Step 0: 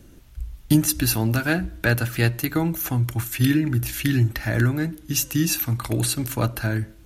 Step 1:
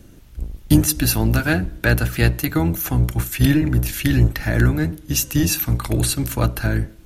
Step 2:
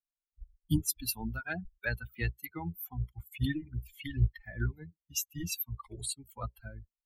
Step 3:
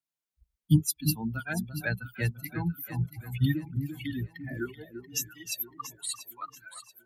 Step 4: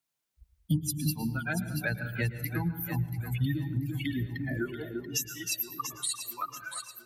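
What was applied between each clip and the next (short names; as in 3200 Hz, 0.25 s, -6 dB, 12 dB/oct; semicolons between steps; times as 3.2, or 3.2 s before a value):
octaver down 1 oct, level -2 dB; gain +2.5 dB
per-bin expansion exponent 3; bell 410 Hz -6.5 dB 1.4 oct; gain -8.5 dB
wow and flutter 25 cents; high-pass sweep 140 Hz -> 2400 Hz, 3.67–6.93; echo with dull and thin repeats by turns 0.342 s, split 1100 Hz, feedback 59%, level -7.5 dB; gain +2 dB
on a send at -13 dB: reverb RT60 0.70 s, pre-delay 0.107 s; on the sum: compressor 2.5:1, threshold -38 dBFS, peak gain reduction 15 dB; gain +7 dB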